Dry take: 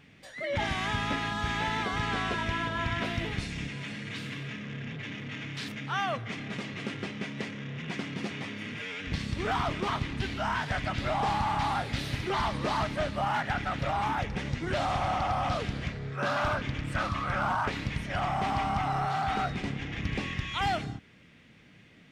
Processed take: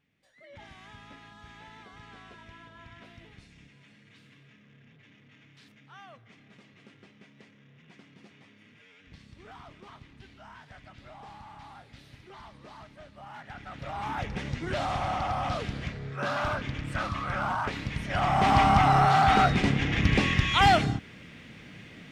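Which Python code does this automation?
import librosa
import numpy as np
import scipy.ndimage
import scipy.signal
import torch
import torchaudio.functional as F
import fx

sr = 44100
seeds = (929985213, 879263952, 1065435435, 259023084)

y = fx.gain(x, sr, db=fx.line((13.09, -19.0), (13.66, -11.5), (14.26, -1.0), (17.91, -1.0), (18.57, 9.0)))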